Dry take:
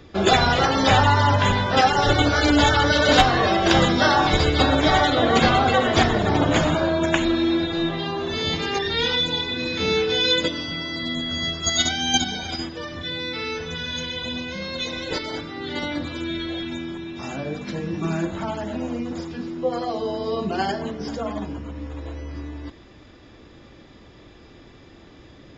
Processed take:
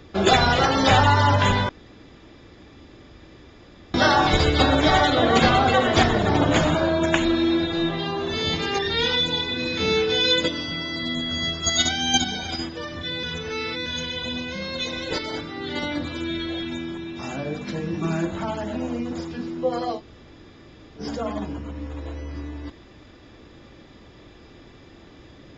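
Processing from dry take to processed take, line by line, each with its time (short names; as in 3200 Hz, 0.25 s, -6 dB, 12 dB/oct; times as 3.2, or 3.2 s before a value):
1.69–3.94 room tone
13.23–13.86 reverse
19.97–21 room tone, crossfade 0.10 s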